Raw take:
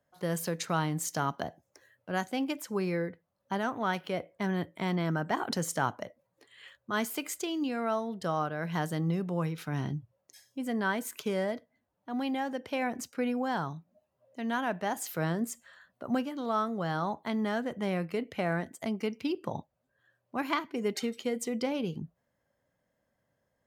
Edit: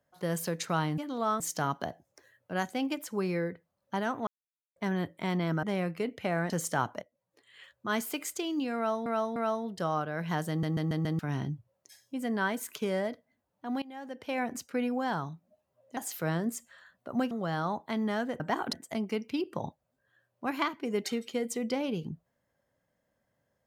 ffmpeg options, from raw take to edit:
-filter_complex "[0:a]asplit=20[s0][s1][s2][s3][s4][s5][s6][s7][s8][s9][s10][s11][s12][s13][s14][s15][s16][s17][s18][s19];[s0]atrim=end=0.982[s20];[s1]atrim=start=16.258:end=16.682[s21];[s2]atrim=start=0.978:end=3.85,asetpts=PTS-STARTPTS,afade=t=out:st=2.868:d=0.004:c=hsin[s22];[s3]atrim=start=3.85:end=4.34,asetpts=PTS-STARTPTS,volume=0[s23];[s4]atrim=start=4.34:end=5.212,asetpts=PTS-STARTPTS,afade=t=in:d=0.004:c=hsin[s24];[s5]atrim=start=17.768:end=18.642[s25];[s6]atrim=start=5.538:end=6.06,asetpts=PTS-STARTPTS,afade=t=out:st=0.518:d=0.004:c=hsin:silence=0.16788[s26];[s7]atrim=start=6.06:end=8.102,asetpts=PTS-STARTPTS,afade=t=in:d=0.73:silence=0.16788[s27];[s8]atrim=start=7.798:end=8.102[s28];[s9]atrim=start=7.798:end=9.072[s29];[s10]atrim=start=8.928:end=9.072[s30];[s11]atrim=start=8.928:end=9.072[s31];[s12]atrim=start=8.928:end=9.072[s32];[s13]atrim=start=8.928:end=9.072[s33];[s14]atrim=start=9.628:end=12.26,asetpts=PTS-STARTPTS,afade=t=out:st=2.628:d=0.004:c=hsin:silence=0.0707946[s34];[s15]atrim=start=12.26:end=14.412,asetpts=PTS-STARTPTS,afade=t=in:d=0.6:silence=0.0707946[s35];[s16]atrim=start=14.918:end=16.262[s36];[s17]atrim=start=16.678:end=17.772[s37];[s18]atrim=start=5.208:end=5.542[s38];[s19]atrim=start=18.638[s39];[s20][s21]acrossfade=d=0.004:c1=hsin:c2=hsin[s40];[s22][s23][s24]concat=n=3:v=0:a=1[s41];[s40][s41]acrossfade=d=0.004:c1=hsin:c2=hsin[s42];[s42][s25]acrossfade=d=0.004:c1=hsin:c2=hsin[s43];[s26][s27]concat=n=2:v=0:a=1[s44];[s43][s44]acrossfade=d=0.004:c1=hsin:c2=hsin[s45];[s45][s28]acrossfade=d=0.004:c1=hsin:c2=hsin[s46];[s46][s29]acrossfade=d=0.004:c1=hsin:c2=hsin[s47];[s47][s30]acrossfade=d=0.004:c1=hsin:c2=hsin[s48];[s48][s31]acrossfade=d=0.004:c1=hsin:c2=hsin[s49];[s49][s32]acrossfade=d=0.004:c1=hsin:c2=hsin[s50];[s50][s33]acrossfade=d=0.004:c1=hsin:c2=hsin[s51];[s34][s35]concat=n=2:v=0:a=1[s52];[s51][s52]acrossfade=d=0.004:c1=hsin:c2=hsin[s53];[s53][s36]acrossfade=d=0.004:c1=hsin:c2=hsin[s54];[s54][s37]acrossfade=d=0.004:c1=hsin:c2=hsin[s55];[s55][s38]acrossfade=d=0.004:c1=hsin:c2=hsin[s56];[s56][s39]acrossfade=d=0.004:c1=hsin:c2=hsin"

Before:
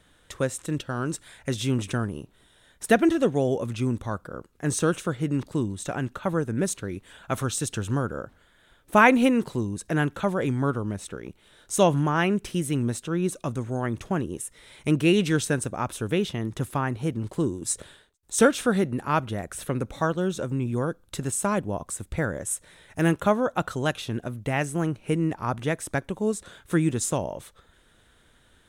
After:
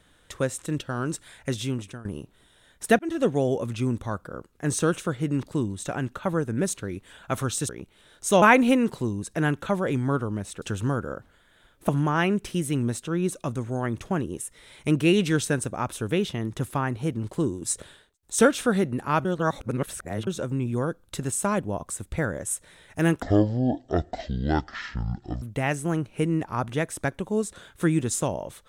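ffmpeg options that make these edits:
-filter_complex "[0:a]asplit=11[s0][s1][s2][s3][s4][s5][s6][s7][s8][s9][s10];[s0]atrim=end=2.05,asetpts=PTS-STARTPTS,afade=t=out:st=1.49:d=0.56:silence=0.0944061[s11];[s1]atrim=start=2.05:end=2.99,asetpts=PTS-STARTPTS,afade=t=in:d=0.004:c=hsin:silence=0.0944061,afade=t=out:st=0.936:d=0.004:c=hsin[s12];[s2]atrim=start=2.99:end=7.692,asetpts=PTS-STARTPTS,afade=t=in:d=0.27[s13];[s3]atrim=start=11.158:end=11.892[s14];[s4]atrim=start=8.958:end=11.162[s15];[s5]atrim=start=7.688:end=8.962[s16];[s6]atrim=start=11.888:end=19.252[s17];[s7]atrim=start=19.248:end=20.272,asetpts=PTS-STARTPTS,areverse[s18];[s8]atrim=start=20.268:end=23.224[s19];[s9]atrim=start=23.22:end=24.32,asetpts=PTS-STARTPTS,asetrate=22050,aresample=44100[s20];[s10]atrim=start=24.316[s21];[s11][s12][s13]concat=n=3:v=0:a=1[s22];[s22][s14]acrossfade=d=0.004:c1=hsin:c2=hsin[s23];[s23][s15]acrossfade=d=0.004:c1=hsin:c2=hsin[s24];[s24][s16]acrossfade=d=0.004:c1=hsin:c2=hsin[s25];[s25][s17]acrossfade=d=0.004:c1=hsin:c2=hsin[s26];[s26][s18]acrossfade=d=0.004:c1=hsin:c2=hsin[s27];[s27][s19]acrossfade=d=0.004:c1=hsin:c2=hsin[s28];[s28][s20]acrossfade=d=0.004:c1=hsin:c2=hsin[s29];[s29][s21]acrossfade=d=0.004:c1=hsin:c2=hsin"

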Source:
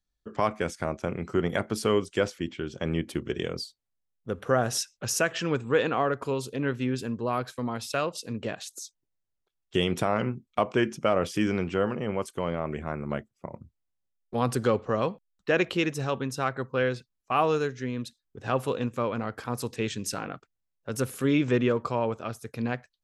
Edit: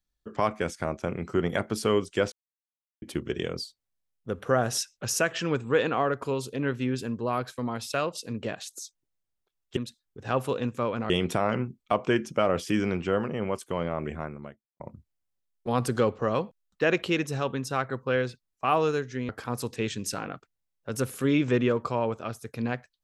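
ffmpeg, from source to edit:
-filter_complex "[0:a]asplit=7[s0][s1][s2][s3][s4][s5][s6];[s0]atrim=end=2.32,asetpts=PTS-STARTPTS,afade=t=out:st=2.316:d=0.004:c=hsin[s7];[s1]atrim=start=2.32:end=3.02,asetpts=PTS-STARTPTS,volume=0[s8];[s2]atrim=start=3.02:end=9.772,asetpts=PTS-STARTPTS,afade=t=in:d=0.004:c=hsin[s9];[s3]atrim=start=17.958:end=19.292[s10];[s4]atrim=start=9.768:end=13.47,asetpts=PTS-STARTPTS,afade=t=out:st=3.062:d=0.64:c=qua[s11];[s5]atrim=start=13.47:end=17.962,asetpts=PTS-STARTPTS,afade=t=in:d=0.004:c=hsin[s12];[s6]atrim=start=19.288[s13];[s7][s8][s9]concat=n=3:v=0:a=1[s14];[s14][s10]acrossfade=d=0.004:c1=hsin:c2=hsin[s15];[s11][s12]concat=n=2:v=0:a=1[s16];[s15][s16]acrossfade=d=0.004:c1=hsin:c2=hsin[s17];[s17][s13]acrossfade=d=0.004:c1=hsin:c2=hsin"

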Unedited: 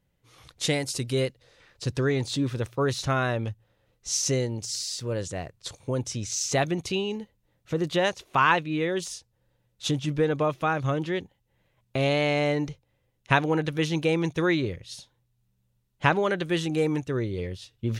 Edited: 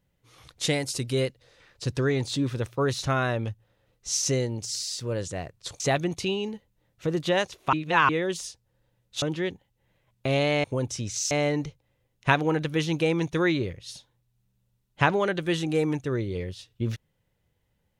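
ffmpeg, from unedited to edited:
-filter_complex "[0:a]asplit=7[s0][s1][s2][s3][s4][s5][s6];[s0]atrim=end=5.802[s7];[s1]atrim=start=6.468:end=8.402[s8];[s2]atrim=start=8.398:end=8.762,asetpts=PTS-STARTPTS,areverse[s9];[s3]atrim=start=8.758:end=9.892[s10];[s4]atrim=start=10.918:end=12.342[s11];[s5]atrim=start=5.798:end=6.472[s12];[s6]atrim=start=12.338[s13];[s7][s8]acrossfade=d=0.004:c1=hsin:c2=hsin[s14];[s14][s9]acrossfade=d=0.004:c1=hsin:c2=hsin[s15];[s15][s10]acrossfade=d=0.004:c1=hsin:c2=hsin[s16];[s16][s11]acrossfade=d=0.004:c1=hsin:c2=hsin[s17];[s17][s12]acrossfade=d=0.004:c1=hsin:c2=hsin[s18];[s18][s13]acrossfade=d=0.004:c1=hsin:c2=hsin"

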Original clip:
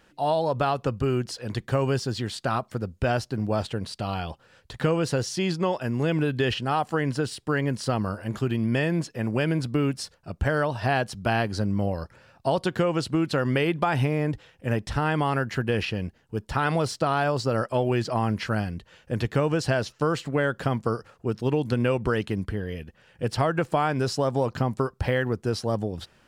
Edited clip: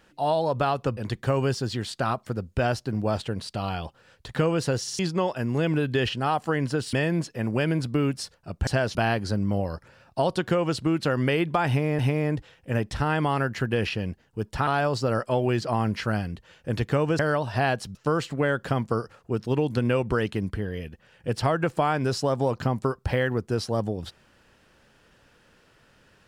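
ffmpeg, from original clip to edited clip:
-filter_complex "[0:a]asplit=12[s0][s1][s2][s3][s4][s5][s6][s7][s8][s9][s10][s11];[s0]atrim=end=0.972[s12];[s1]atrim=start=1.418:end=5.322[s13];[s2]atrim=start=5.258:end=5.322[s14];[s3]atrim=start=5.258:end=5.322[s15];[s4]atrim=start=5.438:end=7.382[s16];[s5]atrim=start=8.728:end=10.472[s17];[s6]atrim=start=19.618:end=19.902[s18];[s7]atrim=start=11.228:end=14.272[s19];[s8]atrim=start=13.948:end=16.632[s20];[s9]atrim=start=17.098:end=19.622[s21];[s10]atrim=start=10.468:end=11.232[s22];[s11]atrim=start=19.898[s23];[s12][s13]acrossfade=d=0.004:c1=hsin:c2=hsin[s24];[s24][s14]acrossfade=d=0.004:c1=hsin:c2=hsin[s25];[s25][s15]acrossfade=d=0.004:c1=hsin:c2=hsin[s26];[s26][s16]acrossfade=d=0.004:c1=hsin:c2=hsin[s27];[s27][s17]acrossfade=d=0.004:c1=hsin:c2=hsin[s28];[s28][s18]acrossfade=d=0.004:c1=hsin:c2=hsin[s29];[s29][s19]acrossfade=d=0.004:c1=hsin:c2=hsin[s30];[s30][s20]acrossfade=d=0.004:c1=hsin:c2=hsin[s31];[s31][s21]acrossfade=d=0.004:c1=hsin:c2=hsin[s32];[s32][s22]acrossfade=d=0.004:c1=hsin:c2=hsin[s33];[s33][s23]acrossfade=d=0.004:c1=hsin:c2=hsin"

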